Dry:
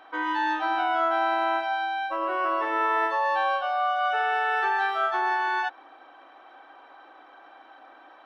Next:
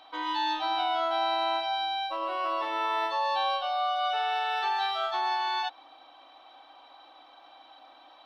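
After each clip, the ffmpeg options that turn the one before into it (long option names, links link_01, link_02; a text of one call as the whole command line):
ffmpeg -i in.wav -af "equalizer=frequency=160:width_type=o:width=0.67:gain=-9,equalizer=frequency=400:width_type=o:width=0.67:gain=-11,equalizer=frequency=1600:width_type=o:width=0.67:gain=-12,equalizer=frequency=4000:width_type=o:width=0.67:gain=12" out.wav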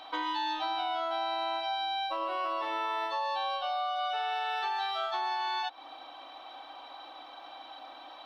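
ffmpeg -i in.wav -af "acompressor=threshold=-37dB:ratio=5,volume=6dB" out.wav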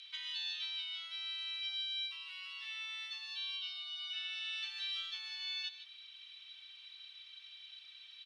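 ffmpeg -i in.wav -af "asuperpass=centerf=5200:order=8:qfactor=0.63,aecho=1:1:153:0.237" out.wav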